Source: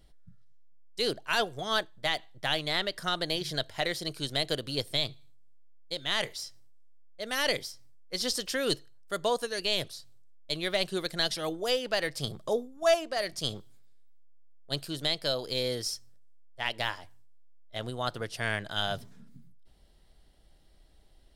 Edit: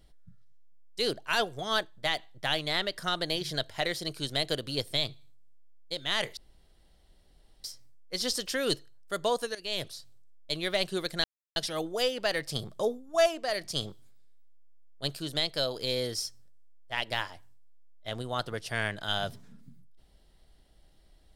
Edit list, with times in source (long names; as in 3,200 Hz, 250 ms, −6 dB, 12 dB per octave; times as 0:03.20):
0:06.37–0:07.64: fill with room tone
0:09.55–0:09.89: fade in, from −16 dB
0:11.24: splice in silence 0.32 s